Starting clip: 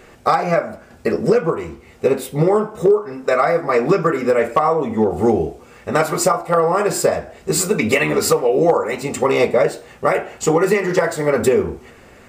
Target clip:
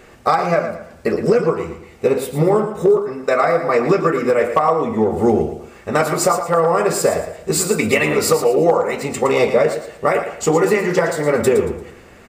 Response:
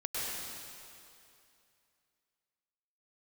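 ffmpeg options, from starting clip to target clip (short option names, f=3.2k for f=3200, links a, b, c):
-af "aecho=1:1:114|228|342|456:0.335|0.107|0.0343|0.011"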